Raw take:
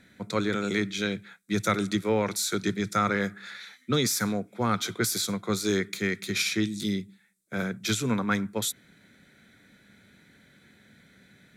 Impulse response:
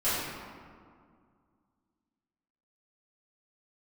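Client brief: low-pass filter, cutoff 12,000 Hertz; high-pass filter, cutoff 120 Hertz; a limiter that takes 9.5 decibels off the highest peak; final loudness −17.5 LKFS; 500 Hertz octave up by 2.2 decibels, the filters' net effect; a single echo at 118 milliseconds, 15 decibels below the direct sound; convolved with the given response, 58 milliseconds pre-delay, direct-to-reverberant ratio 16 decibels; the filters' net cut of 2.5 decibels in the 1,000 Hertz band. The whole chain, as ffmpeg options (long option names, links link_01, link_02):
-filter_complex "[0:a]highpass=120,lowpass=12000,equalizer=frequency=500:width_type=o:gain=3.5,equalizer=frequency=1000:width_type=o:gain=-4.5,alimiter=limit=-19.5dB:level=0:latency=1,aecho=1:1:118:0.178,asplit=2[link_01][link_02];[1:a]atrim=start_sample=2205,adelay=58[link_03];[link_02][link_03]afir=irnorm=-1:irlink=0,volume=-27.5dB[link_04];[link_01][link_04]amix=inputs=2:normalize=0,volume=12.5dB"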